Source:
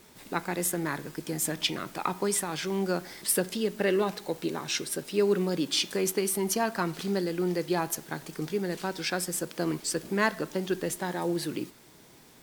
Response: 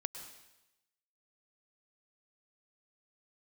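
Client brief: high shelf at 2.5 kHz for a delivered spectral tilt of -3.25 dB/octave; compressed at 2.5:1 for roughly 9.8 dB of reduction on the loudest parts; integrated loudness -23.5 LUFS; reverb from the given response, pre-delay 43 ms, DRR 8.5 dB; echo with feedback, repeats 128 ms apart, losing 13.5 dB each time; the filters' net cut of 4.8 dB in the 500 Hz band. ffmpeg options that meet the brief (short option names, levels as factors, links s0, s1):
-filter_complex "[0:a]equalizer=f=500:t=o:g=-7,highshelf=f=2500:g=4,acompressor=threshold=0.02:ratio=2.5,aecho=1:1:128|256:0.211|0.0444,asplit=2[s0][s1];[1:a]atrim=start_sample=2205,adelay=43[s2];[s1][s2]afir=irnorm=-1:irlink=0,volume=0.398[s3];[s0][s3]amix=inputs=2:normalize=0,volume=3.76"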